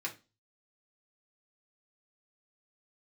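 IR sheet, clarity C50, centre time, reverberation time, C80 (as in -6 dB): 14.5 dB, 11 ms, 0.30 s, 22.0 dB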